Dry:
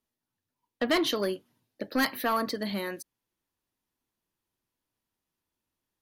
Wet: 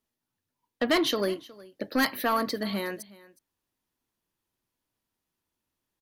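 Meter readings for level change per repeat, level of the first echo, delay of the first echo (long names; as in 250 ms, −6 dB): repeats not evenly spaced, −21.0 dB, 365 ms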